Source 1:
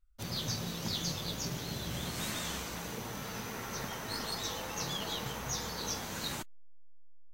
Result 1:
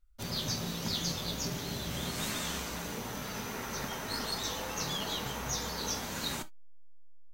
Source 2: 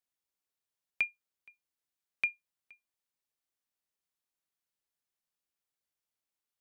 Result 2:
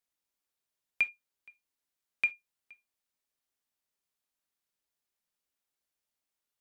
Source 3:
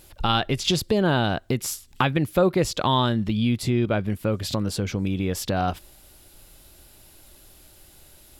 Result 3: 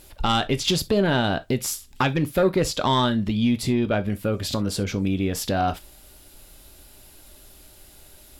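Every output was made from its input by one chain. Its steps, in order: in parallel at -11 dB: sine folder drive 9 dB, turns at -4.5 dBFS; on the sum: gated-style reverb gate 90 ms falling, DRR 10 dB; trim -5.5 dB

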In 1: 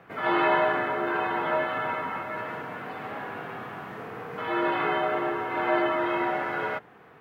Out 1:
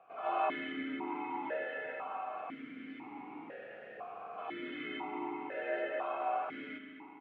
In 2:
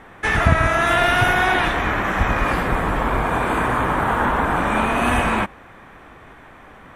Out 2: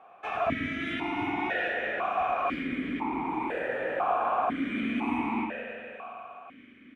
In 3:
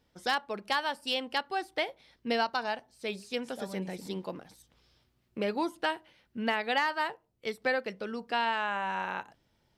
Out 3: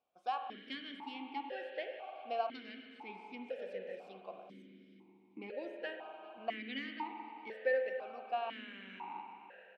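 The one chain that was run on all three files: feedback delay 405 ms, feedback 52%, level -19 dB; spring tank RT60 3.5 s, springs 41/50 ms, chirp 55 ms, DRR 3.5 dB; stepped vowel filter 2 Hz

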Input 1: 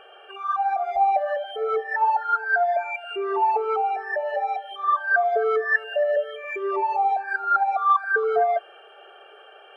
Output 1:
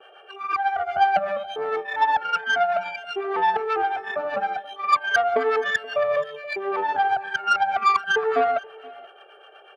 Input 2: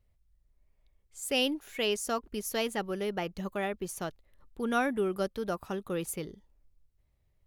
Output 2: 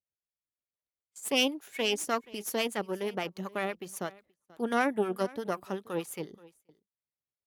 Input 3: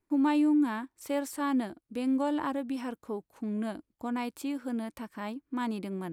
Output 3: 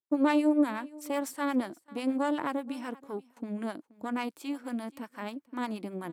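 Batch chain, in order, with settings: harmonic tremolo 8.2 Hz, depth 70%, crossover 650 Hz; Chebyshev shaper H 3 -20 dB, 4 -18 dB, 8 -32 dB, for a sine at -13.5 dBFS; delay 478 ms -21.5 dB; gate with hold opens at -50 dBFS; high-pass 180 Hz 12 dB/octave; trim +5.5 dB

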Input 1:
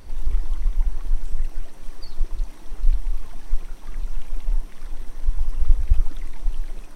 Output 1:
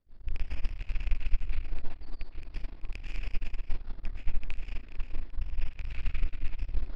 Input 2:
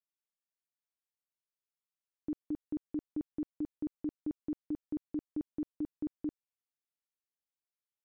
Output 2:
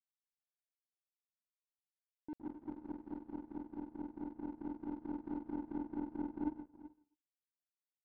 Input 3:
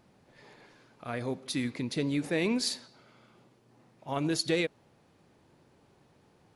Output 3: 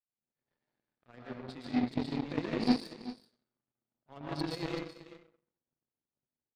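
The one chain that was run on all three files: rattle on loud lows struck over -22 dBFS, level -10 dBFS; peaking EQ 2.9 kHz -3.5 dB 1.5 oct; reverse; compression 10:1, threshold -23 dBFS; reverse; rotary cabinet horn 5 Hz; resampled via 11.025 kHz; saturation -25.5 dBFS; on a send: delay 382 ms -7.5 dB; on the sum: plate-style reverb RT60 0.92 s, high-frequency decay 0.65×, pre-delay 105 ms, DRR -4 dB; power-law waveshaper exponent 2; trim +1 dB

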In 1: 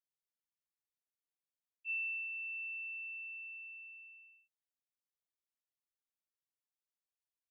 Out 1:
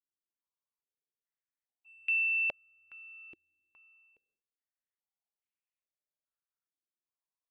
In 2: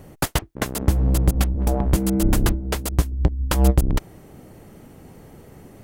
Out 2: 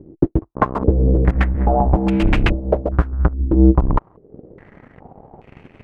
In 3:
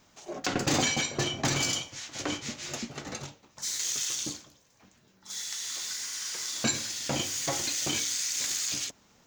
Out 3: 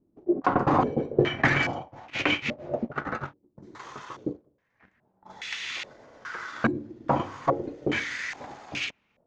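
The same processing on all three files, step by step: transient shaper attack +4 dB, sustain -3 dB; waveshaping leveller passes 2; step-sequenced low-pass 2.4 Hz 340–2500 Hz; trim -3.5 dB

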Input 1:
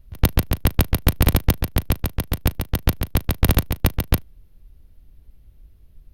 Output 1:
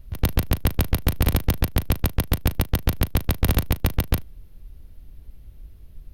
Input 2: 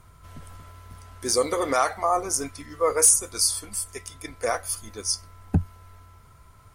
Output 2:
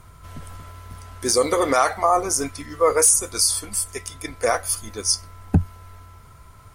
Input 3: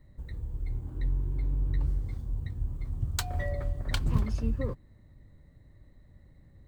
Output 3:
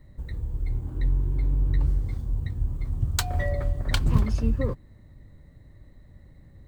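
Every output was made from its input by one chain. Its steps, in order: peak limiter -12.5 dBFS; trim +5.5 dB

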